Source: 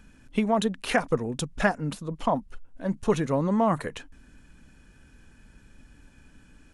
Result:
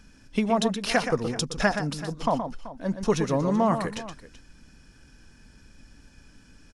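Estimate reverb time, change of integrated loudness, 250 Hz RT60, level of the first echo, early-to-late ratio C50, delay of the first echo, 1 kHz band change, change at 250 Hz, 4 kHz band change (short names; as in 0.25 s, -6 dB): none, +0.5 dB, none, -8.5 dB, none, 0.122 s, +1.0 dB, +0.5 dB, +4.5 dB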